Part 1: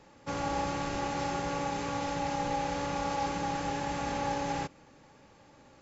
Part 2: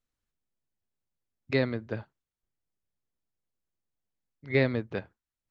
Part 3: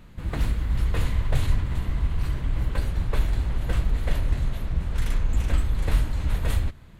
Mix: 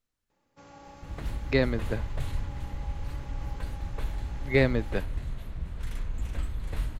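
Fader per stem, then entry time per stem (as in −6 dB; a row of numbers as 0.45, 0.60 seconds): −17.5, +2.0, −9.5 decibels; 0.30, 0.00, 0.85 seconds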